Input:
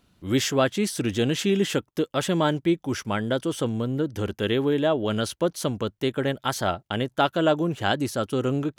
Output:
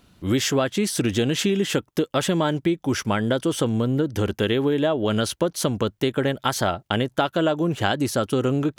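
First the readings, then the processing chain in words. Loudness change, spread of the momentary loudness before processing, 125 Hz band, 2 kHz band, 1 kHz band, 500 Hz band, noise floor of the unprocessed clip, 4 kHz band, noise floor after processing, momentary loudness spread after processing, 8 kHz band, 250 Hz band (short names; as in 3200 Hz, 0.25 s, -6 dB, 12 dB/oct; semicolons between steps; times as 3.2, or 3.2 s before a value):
+2.0 dB, 5 LU, +3.0 dB, +2.0 dB, +1.0 dB, +1.5 dB, -71 dBFS, +2.5 dB, -65 dBFS, 3 LU, +4.0 dB, +2.5 dB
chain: compressor, threshold -25 dBFS, peak gain reduction 9.5 dB; gain +7 dB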